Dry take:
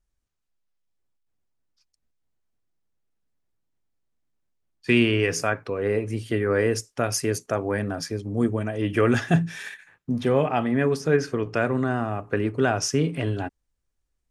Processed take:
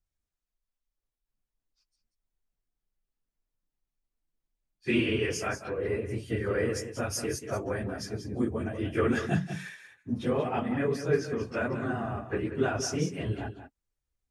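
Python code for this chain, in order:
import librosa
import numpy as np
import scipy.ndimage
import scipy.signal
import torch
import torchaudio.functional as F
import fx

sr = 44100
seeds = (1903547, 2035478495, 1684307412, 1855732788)

p1 = fx.phase_scramble(x, sr, seeds[0], window_ms=50)
p2 = p1 + fx.echo_single(p1, sr, ms=186, db=-10.0, dry=0)
y = p2 * librosa.db_to_amplitude(-7.0)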